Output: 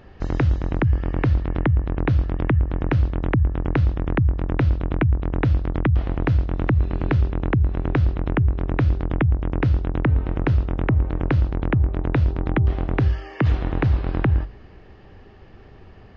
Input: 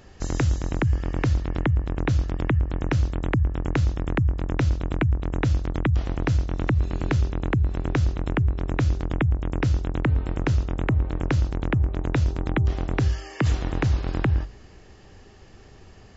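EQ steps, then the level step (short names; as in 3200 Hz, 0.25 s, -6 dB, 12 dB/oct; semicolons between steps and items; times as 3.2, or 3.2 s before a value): Gaussian blur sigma 2.4 samples; +3.0 dB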